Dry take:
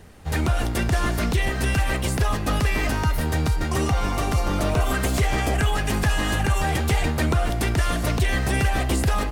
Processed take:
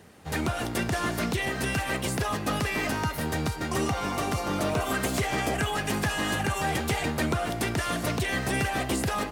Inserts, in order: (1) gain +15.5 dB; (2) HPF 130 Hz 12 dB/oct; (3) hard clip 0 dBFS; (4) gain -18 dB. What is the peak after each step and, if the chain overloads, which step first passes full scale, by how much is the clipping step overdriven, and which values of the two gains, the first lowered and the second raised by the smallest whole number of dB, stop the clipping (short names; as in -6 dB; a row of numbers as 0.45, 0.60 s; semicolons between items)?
+3.5, +6.0, 0.0, -18.0 dBFS; step 1, 6.0 dB; step 1 +9.5 dB, step 4 -12 dB